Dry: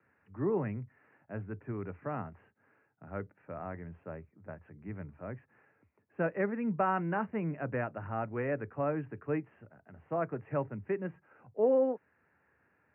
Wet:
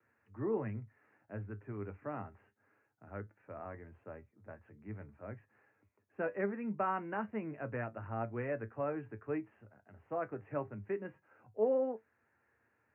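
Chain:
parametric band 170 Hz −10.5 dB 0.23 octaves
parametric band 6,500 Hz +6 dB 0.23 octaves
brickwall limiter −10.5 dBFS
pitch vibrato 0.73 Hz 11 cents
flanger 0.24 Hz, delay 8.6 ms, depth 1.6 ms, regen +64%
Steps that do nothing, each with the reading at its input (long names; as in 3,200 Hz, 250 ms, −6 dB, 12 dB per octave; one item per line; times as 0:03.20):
parametric band 6,500 Hz: nothing at its input above 2,600 Hz
brickwall limiter −10.5 dBFS: peak of its input −17.5 dBFS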